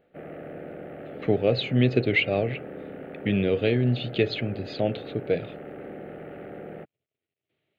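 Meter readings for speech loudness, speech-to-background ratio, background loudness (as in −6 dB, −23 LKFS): −25.5 LKFS, 14.5 dB, −40.0 LKFS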